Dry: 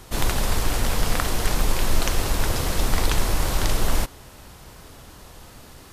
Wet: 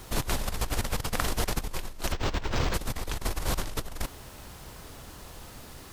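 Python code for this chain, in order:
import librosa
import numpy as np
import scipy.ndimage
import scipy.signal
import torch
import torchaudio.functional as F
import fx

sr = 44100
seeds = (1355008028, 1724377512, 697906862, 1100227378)

y = fx.dmg_noise_colour(x, sr, seeds[0], colour='white', level_db=-58.0)
y = fx.over_compress(y, sr, threshold_db=-23.0, ratio=-0.5)
y = fx.resample_linear(y, sr, factor=4, at=(2.12, 2.74))
y = y * 10.0 ** (-5.5 / 20.0)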